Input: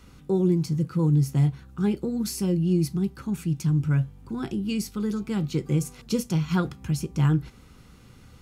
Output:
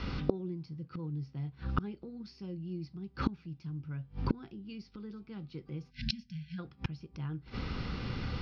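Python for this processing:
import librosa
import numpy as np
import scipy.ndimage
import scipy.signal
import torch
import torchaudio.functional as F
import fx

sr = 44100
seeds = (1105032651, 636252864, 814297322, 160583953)

y = fx.gate_flip(x, sr, shuts_db=-29.0, range_db=-31)
y = scipy.signal.sosfilt(scipy.signal.ellip(4, 1.0, 40, 5100.0, 'lowpass', fs=sr, output='sos'), y)
y = fx.spec_erase(y, sr, start_s=5.9, length_s=0.69, low_hz=250.0, high_hz=1500.0)
y = y * librosa.db_to_amplitude(14.5)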